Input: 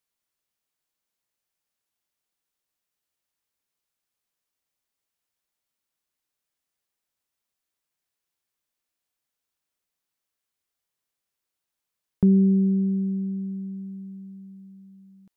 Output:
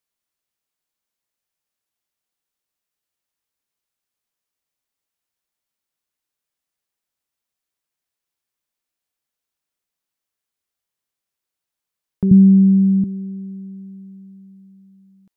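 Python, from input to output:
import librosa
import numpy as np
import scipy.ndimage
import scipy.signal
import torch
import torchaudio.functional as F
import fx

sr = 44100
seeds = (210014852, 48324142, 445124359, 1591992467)

y = fx.low_shelf_res(x, sr, hz=210.0, db=14.0, q=1.5, at=(12.31, 13.04))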